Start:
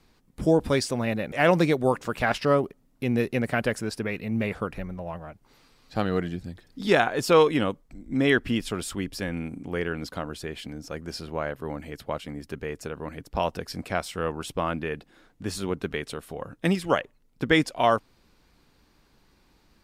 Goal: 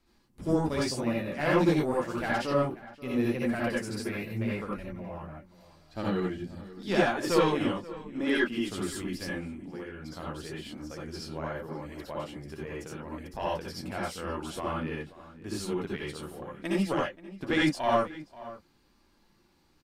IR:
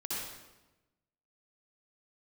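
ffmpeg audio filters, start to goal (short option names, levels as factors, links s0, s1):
-filter_complex "[0:a]asettb=1/sr,asplit=3[s0][s1][s2];[s0]atrim=end=3.944[s3];[s1]atrim=start=3.94:end=4.34,asetpts=PTS-STARTPTS,afade=t=in:d=0.004:c=qsin,afade=t=out:st=0.396:d=0.004:c=qsin,highshelf=f=5000:g=9.5[s4];[s2]atrim=start=4.336[s5];[s3][s4]acrossfade=d=0.004:c1=hsin:c2=qsin[s6];[s6][s5]acrossfade=d=0.004:c1=qsin:c2=hsin,asettb=1/sr,asplit=3[s7][s8][s9];[s7]atrim=end=8.084[s10];[s8]atrim=start=8.08:end=8.68,asetpts=PTS-STARTPTS,afade=t=in:d=0.004:c=qsin,afade=t=out:st=0.596:d=0.004:c=qsin,highpass=220[s11];[s9]atrim=start=8.676[s12];[s10][s11]acrossfade=d=0.004:c1=hsin:c2=qsin[s13];[s13][s12]acrossfade=d=0.004:c1=qsin:c2=hsin,asettb=1/sr,asplit=3[s14][s15][s16];[s14]atrim=end=9.374[s17];[s15]atrim=start=9.37:end=10.09,asetpts=PTS-STARTPTS,afade=t=in:d=0.004:c=qsin,afade=t=out:st=0.716:d=0.004:c=qsin,acompressor=threshold=0.0224:ratio=12[s18];[s16]atrim=start=10.086[s19];[s17][s18]acrossfade=d=0.004:c1=hsin:c2=qsin[s20];[s20][s19]acrossfade=d=0.004:c1=qsin:c2=hsin,flanger=delay=3.1:depth=9.9:regen=-37:speed=0.84:shape=sinusoidal,aeval=exprs='(tanh(3.98*val(0)+0.45)-tanh(0.45))/3.98':c=same,asplit=2[s21][s22];[s22]adelay=530.6,volume=0.141,highshelf=f=4000:g=-11.9[s23];[s21][s23]amix=inputs=2:normalize=0[s24];[1:a]atrim=start_sample=2205,atrim=end_sample=4410[s25];[s24][s25]afir=irnorm=-1:irlink=0,volume=1.12"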